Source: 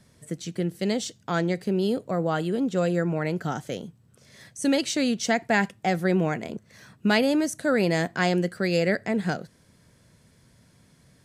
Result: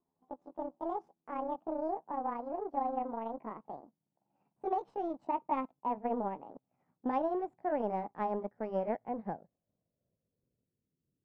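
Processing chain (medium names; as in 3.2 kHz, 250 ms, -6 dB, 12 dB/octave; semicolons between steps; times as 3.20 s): pitch bend over the whole clip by +9.5 st ending unshifted; power-law waveshaper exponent 1.4; low-pass sweep 880 Hz -> 360 Hz, 9.08–11.05 s; trim -8.5 dB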